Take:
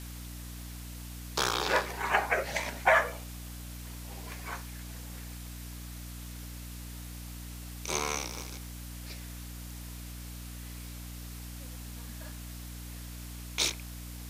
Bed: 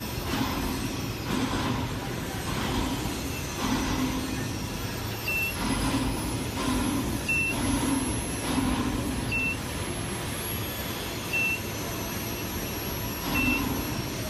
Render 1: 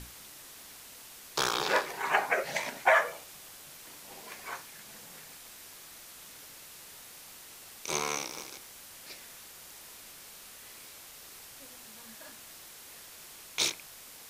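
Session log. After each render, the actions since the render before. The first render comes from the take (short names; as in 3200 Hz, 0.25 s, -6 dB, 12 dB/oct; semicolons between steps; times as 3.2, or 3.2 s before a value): notches 60/120/180/240/300 Hz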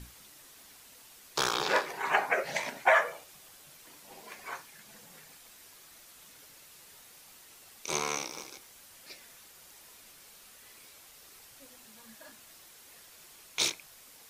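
denoiser 6 dB, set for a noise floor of -50 dBFS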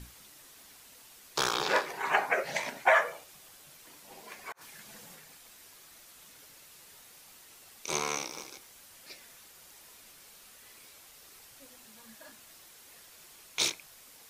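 4.52–5.15 negative-ratio compressor -52 dBFS, ratio -0.5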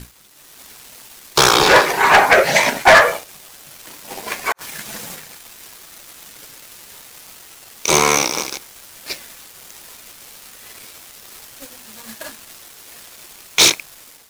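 sample leveller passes 3; AGC gain up to 11 dB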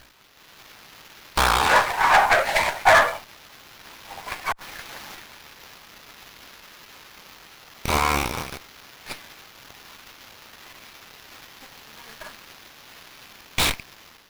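ladder high-pass 590 Hz, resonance 30%; running maximum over 5 samples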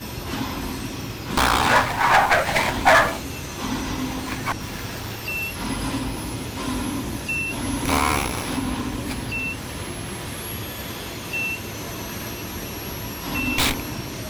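add bed +0.5 dB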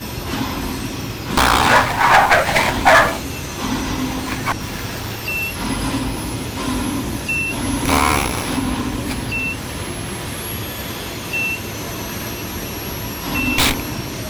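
gain +5 dB; limiter -1 dBFS, peak gain reduction 2 dB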